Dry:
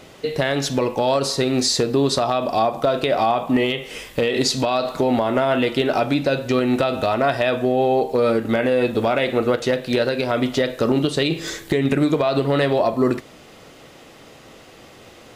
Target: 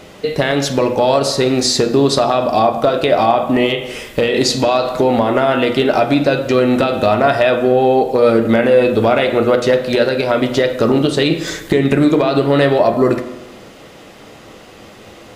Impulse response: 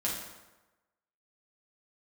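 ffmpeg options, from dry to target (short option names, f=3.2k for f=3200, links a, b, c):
-filter_complex "[0:a]asplit=2[a][b];[b]lowpass=f=2.4k:p=1[c];[1:a]atrim=start_sample=2205[d];[c][d]afir=irnorm=-1:irlink=0,volume=-8.5dB[e];[a][e]amix=inputs=2:normalize=0,volume=3dB"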